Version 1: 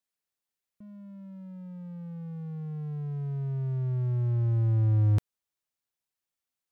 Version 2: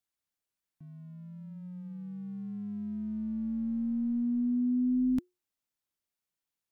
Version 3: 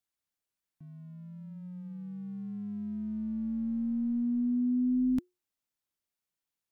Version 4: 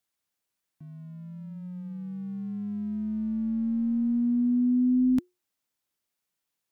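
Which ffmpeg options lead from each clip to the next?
ffmpeg -i in.wav -af "asoftclip=type=tanh:threshold=-22dB,afreqshift=-360,volume=-1.5dB" out.wav
ffmpeg -i in.wav -af anull out.wav
ffmpeg -i in.wav -af "lowshelf=frequency=65:gain=-8.5,volume=5.5dB" out.wav

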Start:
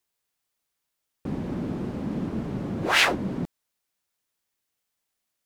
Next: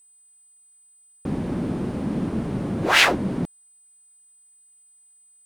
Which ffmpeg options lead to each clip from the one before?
ffmpeg -i in.wav -af "aeval=exprs='val(0)+0.00141*sin(2*PI*8100*n/s)':channel_layout=same,volume=4dB" out.wav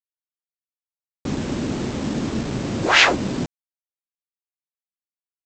ffmpeg -i in.wav -af "equalizer=frequency=180:width=7.4:gain=-8,aresample=16000,acrusher=bits=5:mix=0:aa=0.000001,aresample=44100,volume=2dB" out.wav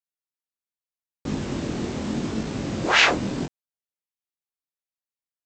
ffmpeg -i in.wav -af "flanger=delay=18.5:depth=7.7:speed=0.81" out.wav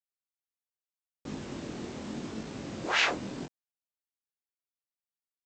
ffmpeg -i in.wav -af "lowshelf=frequency=160:gain=-6.5,volume=-9dB" out.wav

